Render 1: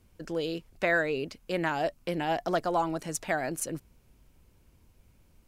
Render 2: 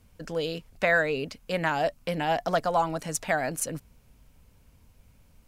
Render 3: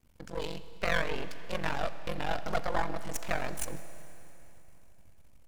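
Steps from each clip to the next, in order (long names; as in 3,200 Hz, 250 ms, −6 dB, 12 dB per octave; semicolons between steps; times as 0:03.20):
parametric band 350 Hz −14.5 dB 0.2 octaves; level +3.5 dB
ring modulation 23 Hz; half-wave rectification; four-comb reverb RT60 3.3 s, combs from 28 ms, DRR 12 dB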